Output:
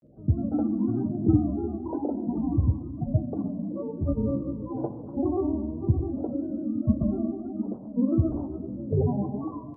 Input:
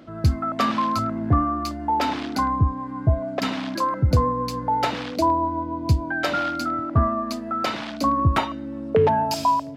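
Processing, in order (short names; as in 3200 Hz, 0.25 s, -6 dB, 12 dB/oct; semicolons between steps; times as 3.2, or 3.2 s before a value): bin magnitudes rounded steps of 30 dB; dynamic EQ 280 Hz, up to +7 dB, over -37 dBFS, Q 1; Gaussian blur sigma 15 samples; grains, pitch spread up and down by 3 st; flange 1 Hz, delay 7.7 ms, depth 2.5 ms, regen -49%; plate-style reverb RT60 1.8 s, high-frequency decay 1×, DRR 11 dB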